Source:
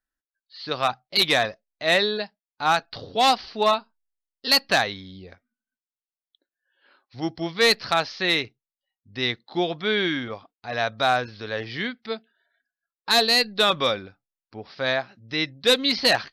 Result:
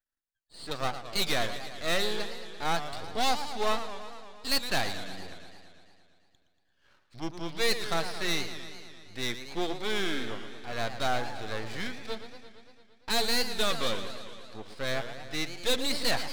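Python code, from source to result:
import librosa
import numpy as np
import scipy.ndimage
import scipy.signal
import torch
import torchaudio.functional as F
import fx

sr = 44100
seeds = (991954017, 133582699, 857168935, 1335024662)

y = fx.diode_clip(x, sr, knee_db=-15.5)
y = np.maximum(y, 0.0)
y = fx.echo_warbled(y, sr, ms=114, feedback_pct=72, rate_hz=2.8, cents=193, wet_db=-11.0)
y = F.gain(torch.from_numpy(y), -1.5).numpy()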